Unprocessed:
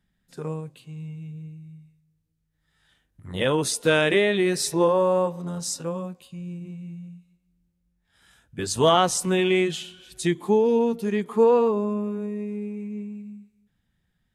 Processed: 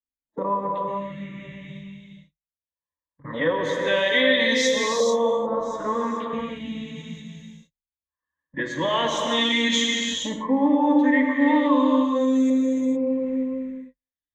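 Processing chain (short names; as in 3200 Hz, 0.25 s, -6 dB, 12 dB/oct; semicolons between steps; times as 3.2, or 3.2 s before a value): gate -46 dBFS, range -51 dB; bell 110 Hz -7 dB 1.5 oct; formant-preserving pitch shift +4 st; reverse; compressor 4:1, threshold -33 dBFS, peak gain reduction 16 dB; reverse; LFO low-pass saw up 0.4 Hz 590–7300 Hz; ripple EQ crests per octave 1.1, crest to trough 15 dB; non-linear reverb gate 0.48 s flat, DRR 0 dB; three-band squash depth 40%; gain +6 dB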